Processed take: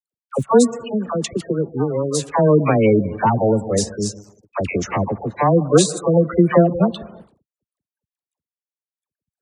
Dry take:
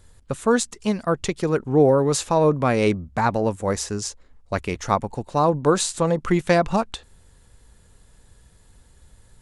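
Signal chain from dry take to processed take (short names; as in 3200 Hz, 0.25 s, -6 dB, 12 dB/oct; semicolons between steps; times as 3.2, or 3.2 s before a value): one-sided fold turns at -14 dBFS; rotary speaker horn 5.5 Hz; 0.59–2.31 compressor 12:1, threshold -24 dBFS, peak gain reduction 11.5 dB; plate-style reverb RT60 1.4 s, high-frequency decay 0.75×, pre-delay 0.115 s, DRR 14.5 dB; crossover distortion -44 dBFS; spectral gate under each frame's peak -20 dB strong; dynamic EQ 1600 Hz, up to -4 dB, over -43 dBFS, Q 1.7; HPF 89 Hz; gate with hold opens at -48 dBFS; dispersion lows, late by 86 ms, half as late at 810 Hz; gain +8.5 dB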